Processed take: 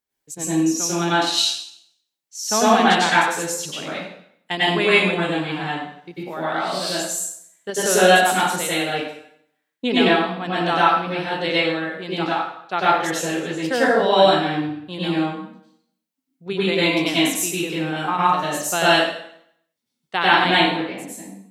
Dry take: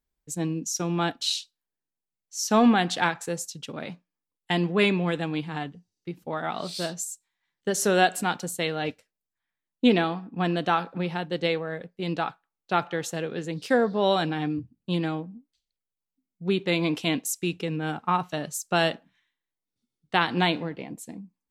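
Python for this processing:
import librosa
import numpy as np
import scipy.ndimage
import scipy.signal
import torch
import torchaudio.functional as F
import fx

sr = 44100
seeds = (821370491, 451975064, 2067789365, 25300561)

p1 = fx.highpass(x, sr, hz=420.0, slope=6)
p2 = fx.level_steps(p1, sr, step_db=13)
p3 = p1 + F.gain(torch.from_numpy(p2), -1.5).numpy()
p4 = fx.rev_plate(p3, sr, seeds[0], rt60_s=0.68, hf_ratio=0.9, predelay_ms=85, drr_db=-8.5)
y = F.gain(torch.from_numpy(p4), -3.0).numpy()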